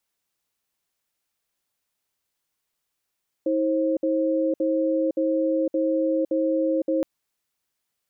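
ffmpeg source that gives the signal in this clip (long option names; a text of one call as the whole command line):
ffmpeg -f lavfi -i "aevalsrc='0.075*(sin(2*PI*320*t)+sin(2*PI*532*t))*clip(min(mod(t,0.57),0.51-mod(t,0.57))/0.005,0,1)':duration=3.57:sample_rate=44100" out.wav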